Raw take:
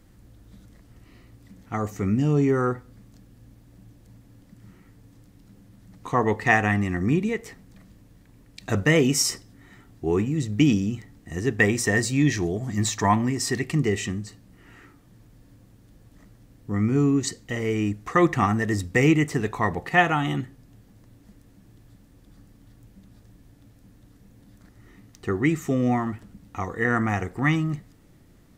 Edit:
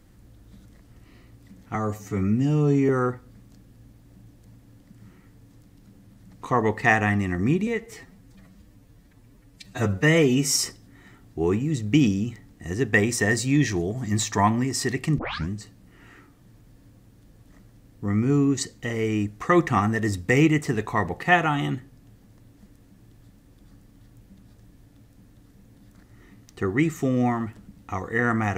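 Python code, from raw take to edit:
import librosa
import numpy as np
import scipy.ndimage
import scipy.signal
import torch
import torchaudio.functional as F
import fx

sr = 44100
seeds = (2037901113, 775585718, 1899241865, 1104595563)

y = fx.edit(x, sr, fx.stretch_span(start_s=1.75, length_s=0.76, factor=1.5),
    fx.stretch_span(start_s=7.29, length_s=1.92, factor=1.5),
    fx.tape_start(start_s=13.84, length_s=0.31), tone=tone)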